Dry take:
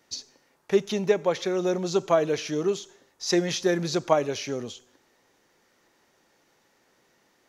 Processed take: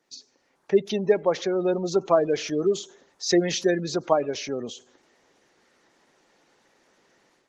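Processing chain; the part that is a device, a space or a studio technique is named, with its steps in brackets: noise-suppressed video call (HPF 160 Hz 12 dB/oct; spectral gate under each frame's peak -25 dB strong; AGC gain up to 10 dB; gain -5.5 dB; Opus 20 kbps 48000 Hz)

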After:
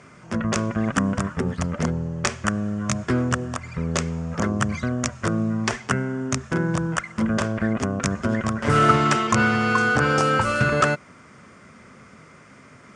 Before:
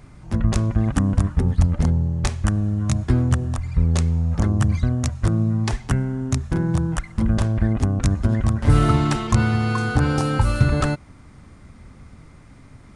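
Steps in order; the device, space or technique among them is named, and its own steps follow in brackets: full-range speaker at full volume (Doppler distortion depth 0.1 ms; speaker cabinet 260–8000 Hz, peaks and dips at 300 Hz -9 dB, 820 Hz -8 dB, 1400 Hz +3 dB, 4000 Hz -9 dB); gain +6.5 dB

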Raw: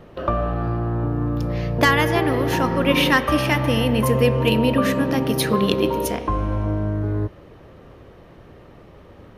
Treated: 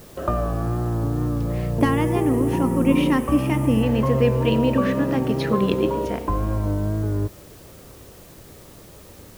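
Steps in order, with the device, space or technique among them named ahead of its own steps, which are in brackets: cassette deck with a dirty head (tape spacing loss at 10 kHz 23 dB; wow and flutter; white noise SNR 28 dB); 1.8–3.83 fifteen-band EQ 250 Hz +6 dB, 630 Hz -5 dB, 1600 Hz -10 dB, 4000 Hz -9 dB, 10000 Hz +11 dB

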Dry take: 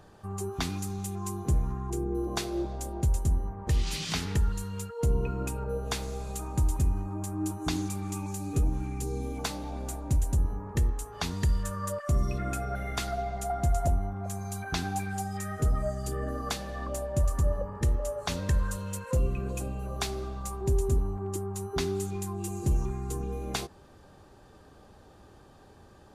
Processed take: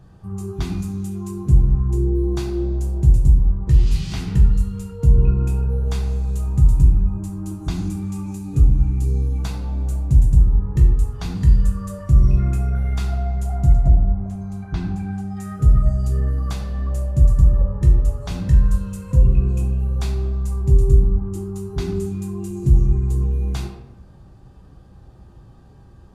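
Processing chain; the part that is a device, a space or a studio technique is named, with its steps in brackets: 13.74–15.37 LPF 2100 Hz 6 dB/oct; tone controls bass +14 dB, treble 0 dB; bathroom (reverb RT60 0.80 s, pre-delay 6 ms, DRR -0.5 dB); gain -5 dB

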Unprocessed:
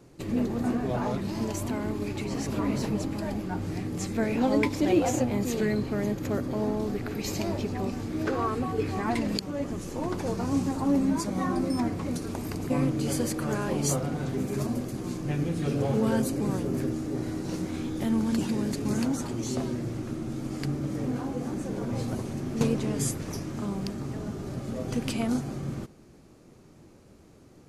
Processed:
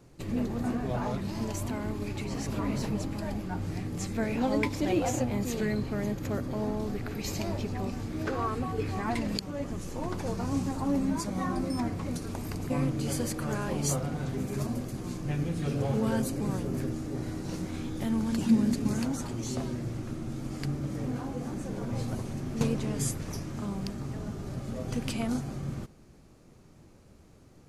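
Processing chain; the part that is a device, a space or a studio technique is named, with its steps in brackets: 18.46–18.87 bell 230 Hz +13.5 dB 0.26 oct; low shelf boost with a cut just above (low shelf 67 Hz +7 dB; bell 340 Hz -3.5 dB 1.1 oct); gain -2 dB

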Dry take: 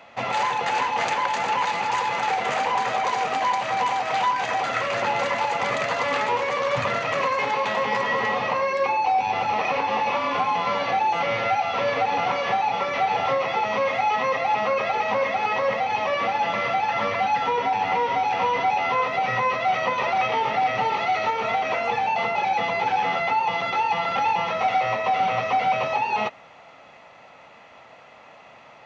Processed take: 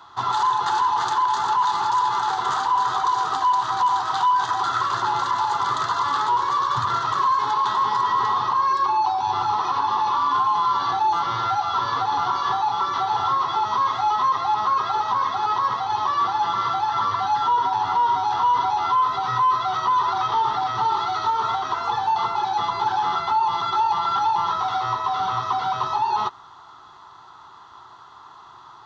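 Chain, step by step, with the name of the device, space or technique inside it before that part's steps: EQ curve 110 Hz 0 dB, 230 Hz -14 dB, 370 Hz +1 dB, 550 Hz -25 dB, 1000 Hz +7 dB, 1500 Hz 0 dB, 2400 Hz -25 dB, 3500 Hz +2 dB, 6200 Hz -2 dB; soft clipper into limiter (soft clip -9.5 dBFS, distortion -26 dB; limiter -17.5 dBFS, peak gain reduction 6 dB); gain +4 dB

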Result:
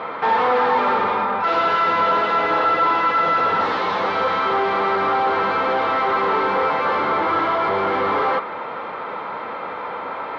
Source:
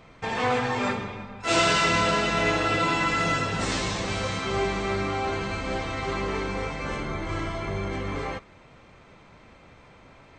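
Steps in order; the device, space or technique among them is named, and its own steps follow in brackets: overdrive pedal into a guitar cabinet (overdrive pedal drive 35 dB, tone 1800 Hz, clips at -11 dBFS; speaker cabinet 110–4000 Hz, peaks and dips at 130 Hz -9 dB, 480 Hz +7 dB, 900 Hz +9 dB, 1300 Hz +8 dB, 2600 Hz -5 dB); gain -4.5 dB

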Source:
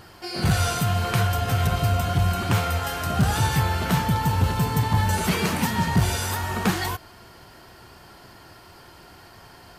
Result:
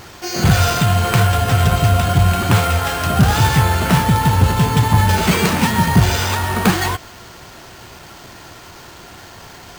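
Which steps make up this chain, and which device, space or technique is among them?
early 8-bit sampler (sample-rate reducer 11000 Hz, jitter 0%; bit-crush 8-bit); gain +8 dB

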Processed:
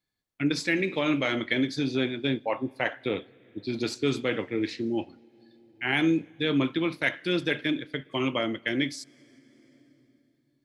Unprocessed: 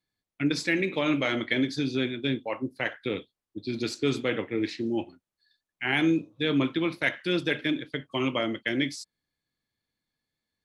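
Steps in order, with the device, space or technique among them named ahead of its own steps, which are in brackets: compressed reverb return (on a send at -12.5 dB: reverb RT60 2.4 s, pre-delay 64 ms + compressor 6:1, threshold -41 dBFS, peak gain reduction 20.5 dB); 1.81–3.98 on the sum: dynamic EQ 770 Hz, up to +6 dB, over -46 dBFS, Q 1.3

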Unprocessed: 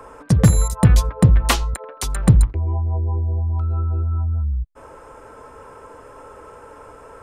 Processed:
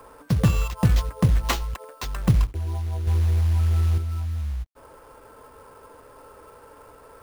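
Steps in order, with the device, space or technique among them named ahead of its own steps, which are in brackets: 3.07–3.98 tilt -2 dB/oct; early companding sampler (sample-rate reducer 10000 Hz, jitter 0%; companded quantiser 6-bit); gain -6.5 dB

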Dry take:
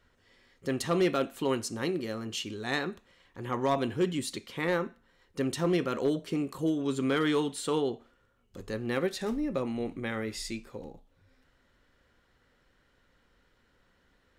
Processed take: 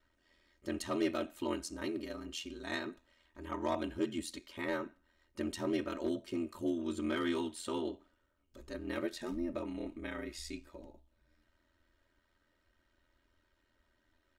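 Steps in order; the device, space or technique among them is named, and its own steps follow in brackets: ring-modulated robot voice (ring modulator 42 Hz; comb 3.2 ms, depth 77%); gain -6.5 dB

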